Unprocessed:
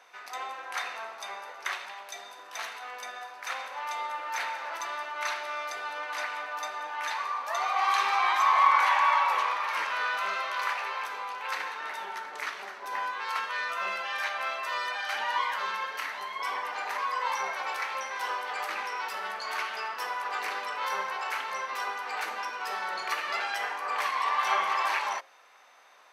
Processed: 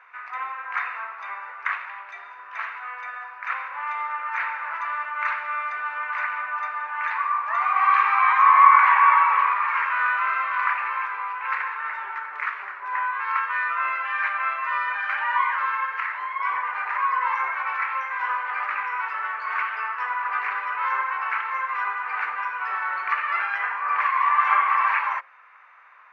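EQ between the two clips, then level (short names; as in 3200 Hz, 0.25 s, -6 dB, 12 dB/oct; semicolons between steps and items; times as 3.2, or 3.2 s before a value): HPF 610 Hz 6 dB/oct; tape spacing loss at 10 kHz 34 dB; band shelf 1600 Hz +15.5 dB; -1.5 dB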